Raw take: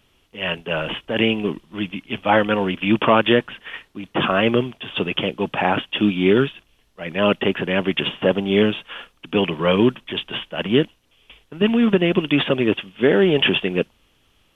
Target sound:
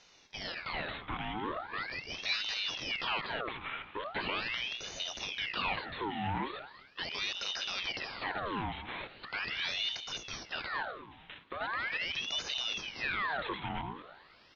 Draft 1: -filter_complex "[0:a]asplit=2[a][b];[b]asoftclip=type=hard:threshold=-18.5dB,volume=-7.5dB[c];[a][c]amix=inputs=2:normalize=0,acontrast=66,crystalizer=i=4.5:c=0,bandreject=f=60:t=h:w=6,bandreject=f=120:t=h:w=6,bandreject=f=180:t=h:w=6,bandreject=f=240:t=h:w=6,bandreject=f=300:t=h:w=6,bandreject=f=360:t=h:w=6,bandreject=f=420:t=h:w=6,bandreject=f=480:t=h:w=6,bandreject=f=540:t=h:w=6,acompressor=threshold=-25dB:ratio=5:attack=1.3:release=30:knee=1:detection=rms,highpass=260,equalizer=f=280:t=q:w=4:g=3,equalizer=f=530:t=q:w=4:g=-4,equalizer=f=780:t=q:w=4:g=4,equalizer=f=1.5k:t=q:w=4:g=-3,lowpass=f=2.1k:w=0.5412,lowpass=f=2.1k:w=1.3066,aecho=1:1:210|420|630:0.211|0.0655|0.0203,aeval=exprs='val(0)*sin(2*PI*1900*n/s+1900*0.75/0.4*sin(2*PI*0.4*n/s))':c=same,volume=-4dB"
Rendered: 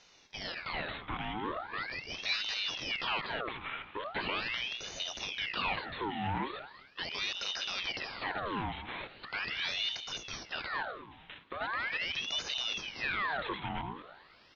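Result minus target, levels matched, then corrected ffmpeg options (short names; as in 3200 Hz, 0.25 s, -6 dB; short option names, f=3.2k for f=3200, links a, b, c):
hard clip: distortion -5 dB
-filter_complex "[0:a]asplit=2[a][b];[b]asoftclip=type=hard:threshold=-28.5dB,volume=-7.5dB[c];[a][c]amix=inputs=2:normalize=0,acontrast=66,crystalizer=i=4.5:c=0,bandreject=f=60:t=h:w=6,bandreject=f=120:t=h:w=6,bandreject=f=180:t=h:w=6,bandreject=f=240:t=h:w=6,bandreject=f=300:t=h:w=6,bandreject=f=360:t=h:w=6,bandreject=f=420:t=h:w=6,bandreject=f=480:t=h:w=6,bandreject=f=540:t=h:w=6,acompressor=threshold=-25dB:ratio=5:attack=1.3:release=30:knee=1:detection=rms,highpass=260,equalizer=f=280:t=q:w=4:g=3,equalizer=f=530:t=q:w=4:g=-4,equalizer=f=780:t=q:w=4:g=4,equalizer=f=1.5k:t=q:w=4:g=-3,lowpass=f=2.1k:w=0.5412,lowpass=f=2.1k:w=1.3066,aecho=1:1:210|420|630:0.211|0.0655|0.0203,aeval=exprs='val(0)*sin(2*PI*1900*n/s+1900*0.75/0.4*sin(2*PI*0.4*n/s))':c=same,volume=-4dB"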